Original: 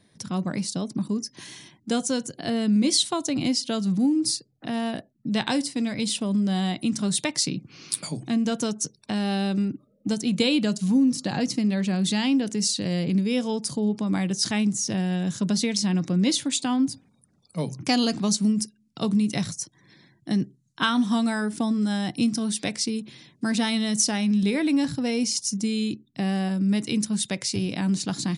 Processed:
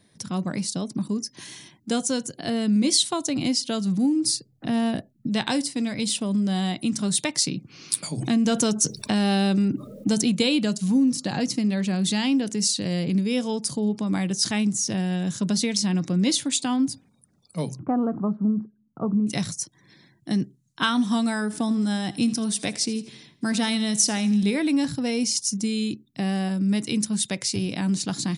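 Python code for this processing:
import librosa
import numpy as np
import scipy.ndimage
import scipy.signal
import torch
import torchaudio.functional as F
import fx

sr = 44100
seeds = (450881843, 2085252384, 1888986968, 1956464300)

y = fx.low_shelf(x, sr, hz=250.0, db=9.5, at=(4.34, 5.27))
y = fx.env_flatten(y, sr, amount_pct=50, at=(8.17, 10.31), fade=0.02)
y = fx.cheby1_lowpass(y, sr, hz=1300.0, order=4, at=(17.79, 19.27))
y = fx.echo_feedback(y, sr, ms=82, feedback_pct=47, wet_db=-18, at=(21.49, 24.52), fade=0.02)
y = fx.high_shelf(y, sr, hz=8000.0, db=5.0)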